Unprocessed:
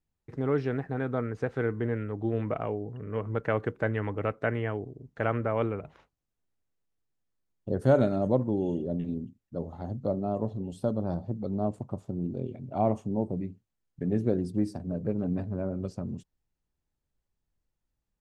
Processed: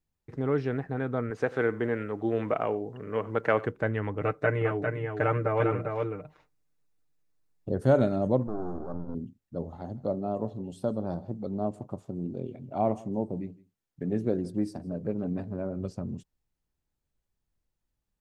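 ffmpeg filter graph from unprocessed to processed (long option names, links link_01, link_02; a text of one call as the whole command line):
ffmpeg -i in.wav -filter_complex "[0:a]asettb=1/sr,asplit=3[link_01][link_02][link_03];[link_01]atrim=end=1.304[link_04];[link_02]atrim=start=1.3:end=3.66,asetpts=PTS-STARTPTS,afade=type=in:duration=0.004:curve=qsin,afade=type=out:start_time=2.356:duration=0.004:curve=qsin,highpass=frequency=380:poles=1,acontrast=37,aecho=1:1:90:0.0944,atrim=end_sample=104076[link_05];[link_03]atrim=start=3.656[link_06];[link_04][link_05]acrossfade=duration=0.004:curve1=hsin:curve2=qsin[link_07];[link_07][link_06]acrossfade=duration=0.004:curve1=qsin:curve2=hsin,asettb=1/sr,asplit=3[link_08][link_09][link_10];[link_08]atrim=end=4.214[link_11];[link_09]atrim=start=4.21:end=7.69,asetpts=PTS-STARTPTS,afade=type=in:duration=0.004:curve=qsin,afade=type=out:start_time=3.476:duration=0.004:curve=qsin,bandreject=frequency=3100:width=11,aecho=1:1:6.6:0.87,atrim=end_sample=153468,aecho=1:1:401:0.562,atrim=end_sample=153468[link_12];[link_10]atrim=start=7.686[link_13];[link_11][link_12]acrossfade=duration=0.004:curve1=hsin:curve2=qsin[link_14];[link_14][link_13]acrossfade=duration=0.004:curve1=qsin:curve2=hsin,asettb=1/sr,asplit=3[link_15][link_16][link_17];[link_15]atrim=end=8.474[link_18];[link_16]atrim=start=8.47:end=9.15,asetpts=PTS-STARTPTS,afade=type=in:duration=0.004:curve=qsin,afade=type=out:start_time=0.676:duration=0.004:curve=qsin,aeval=exprs='max(val(0),0)':channel_layout=same,asuperstop=centerf=2400:order=8:qfactor=0.96,highshelf=frequency=2600:width_type=q:width=1.5:gain=-10.5[link_19];[link_17]atrim=start=9.146[link_20];[link_18][link_19]acrossfade=duration=0.004:curve1=hsin:curve2=qsin[link_21];[link_21][link_20]acrossfade=duration=0.004:curve1=qsin:curve2=hsin,asettb=1/sr,asplit=3[link_22][link_23][link_24];[link_22]atrim=end=9.784[link_25];[link_23]atrim=start=9.78:end=15.77,asetpts=PTS-STARTPTS,afade=type=in:duration=0.004:curve=qsin,afade=type=out:start_time=5.986:duration=0.004:curve=qsin,lowshelf=frequency=86:gain=-11.5,aecho=1:1:162:0.0794,atrim=end_sample=264159[link_26];[link_24]atrim=start=15.766[link_27];[link_25][link_26]acrossfade=duration=0.004:curve1=hsin:curve2=qsin[link_28];[link_28][link_27]acrossfade=duration=0.004:curve1=qsin:curve2=hsin" out.wav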